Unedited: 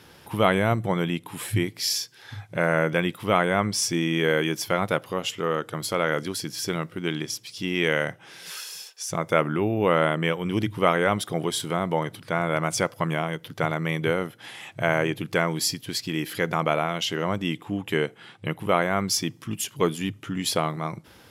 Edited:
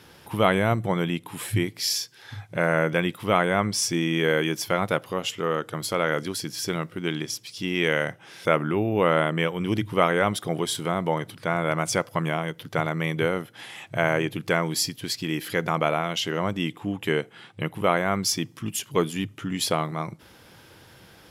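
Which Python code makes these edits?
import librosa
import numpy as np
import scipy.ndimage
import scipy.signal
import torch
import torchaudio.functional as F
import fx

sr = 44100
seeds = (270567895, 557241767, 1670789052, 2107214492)

y = fx.edit(x, sr, fx.cut(start_s=8.45, length_s=0.85), tone=tone)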